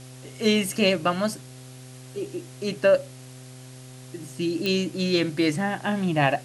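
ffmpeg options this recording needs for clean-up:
ffmpeg -i in.wav -af "adeclick=threshold=4,bandreject=frequency=128.3:width_type=h:width=4,bandreject=frequency=256.6:width_type=h:width=4,bandreject=frequency=384.9:width_type=h:width=4,bandreject=frequency=513.2:width_type=h:width=4,bandreject=frequency=641.5:width_type=h:width=4,bandreject=frequency=769.8:width_type=h:width=4,afwtdn=0.004" out.wav

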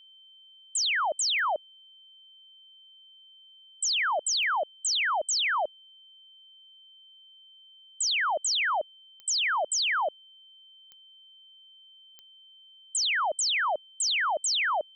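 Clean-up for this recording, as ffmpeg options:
ffmpeg -i in.wav -af "adeclick=threshold=4,bandreject=frequency=3100:width=30" out.wav

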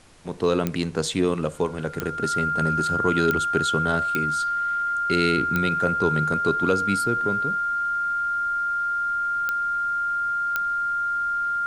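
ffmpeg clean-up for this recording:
ffmpeg -i in.wav -af "adeclick=threshold=4,bandreject=frequency=1400:width=30,agate=range=-21dB:threshold=-20dB" out.wav

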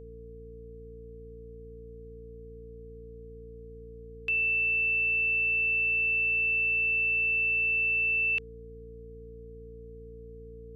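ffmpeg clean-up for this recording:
ffmpeg -i in.wav -af "bandreject=frequency=57.6:width_type=h:width=4,bandreject=frequency=115.2:width_type=h:width=4,bandreject=frequency=172.8:width_type=h:width=4,bandreject=frequency=230.4:width_type=h:width=4,bandreject=frequency=288:width_type=h:width=4,bandreject=frequency=450:width=30" out.wav

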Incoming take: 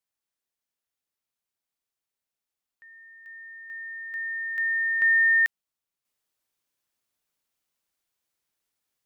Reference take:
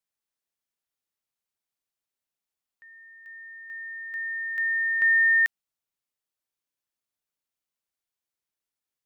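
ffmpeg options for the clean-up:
ffmpeg -i in.wav -af "asetnsamples=nb_out_samples=441:pad=0,asendcmd='6.05 volume volume -7dB',volume=0dB" out.wav

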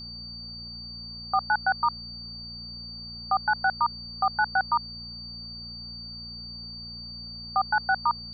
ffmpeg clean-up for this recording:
ffmpeg -i in.wav -af "bandreject=frequency=58.4:width_type=h:width=4,bandreject=frequency=116.8:width_type=h:width=4,bandreject=frequency=175.2:width_type=h:width=4,bandreject=frequency=233.6:width_type=h:width=4,bandreject=frequency=4600:width=30,agate=range=-21dB:threshold=-32dB" out.wav

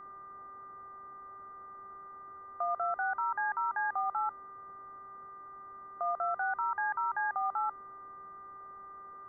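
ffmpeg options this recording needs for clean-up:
ffmpeg -i in.wav -af "bandreject=frequency=390.5:width_type=h:width=4,bandreject=frequency=781:width_type=h:width=4,bandreject=frequency=1171.5:width_type=h:width=4,bandreject=frequency=1562:width_type=h:width=4,bandreject=frequency=1952.5:width_type=h:width=4,bandreject=frequency=1200:width=30,afwtdn=0.0025" out.wav

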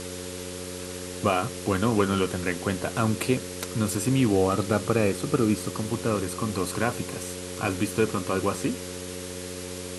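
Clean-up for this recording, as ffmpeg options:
ffmpeg -i in.wav -af "adeclick=threshold=4,bandreject=frequency=90.9:width_type=h:width=4,bandreject=frequency=181.8:width_type=h:width=4,bandreject=frequency=272.7:width_type=h:width=4,bandreject=frequency=363.6:width_type=h:width=4,bandreject=frequency=454.5:width_type=h:width=4,bandreject=frequency=545.4:width_type=h:width=4,bandreject=frequency=440:width=30,afftdn=noise_reduction=30:noise_floor=-36" out.wav

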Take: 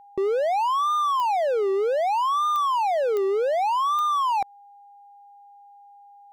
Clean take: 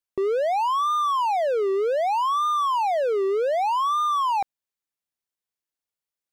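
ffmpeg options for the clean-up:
ffmpeg -i in.wav -af "adeclick=threshold=4,bandreject=frequency=810:width=30" out.wav

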